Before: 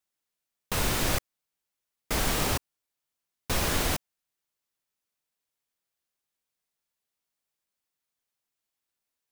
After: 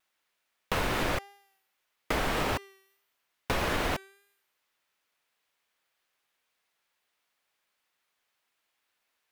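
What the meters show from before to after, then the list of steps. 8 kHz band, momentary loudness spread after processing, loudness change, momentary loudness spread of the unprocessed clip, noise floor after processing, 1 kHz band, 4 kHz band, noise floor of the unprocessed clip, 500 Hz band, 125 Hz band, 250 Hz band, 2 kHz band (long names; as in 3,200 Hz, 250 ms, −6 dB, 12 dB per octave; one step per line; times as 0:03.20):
−11.0 dB, 7 LU, −2.5 dB, 7 LU, −80 dBFS, +1.5 dB, −4.0 dB, below −85 dBFS, +1.5 dB, −4.0 dB, −1.0 dB, +1.0 dB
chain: bass and treble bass −6 dB, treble −14 dB
hum removal 393.7 Hz, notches 38
downward compressor 5 to 1, threshold −32 dBFS, peak gain reduction 6 dB
pitch vibrato 1.7 Hz 35 cents
one half of a high-frequency compander encoder only
level +6.5 dB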